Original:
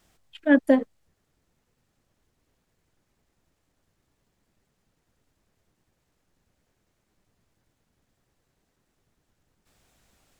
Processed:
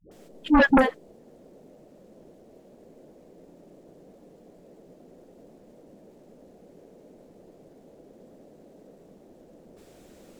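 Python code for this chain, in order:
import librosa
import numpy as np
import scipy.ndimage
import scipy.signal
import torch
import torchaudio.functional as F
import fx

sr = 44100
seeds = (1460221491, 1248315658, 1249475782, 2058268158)

y = fx.dmg_noise_band(x, sr, seeds[0], low_hz=160.0, high_hz=600.0, level_db=-59.0)
y = fx.dispersion(y, sr, late='highs', ms=114.0, hz=430.0)
y = fx.fold_sine(y, sr, drive_db=9, ceiling_db=-6.5)
y = y * 10.0 ** (-6.0 / 20.0)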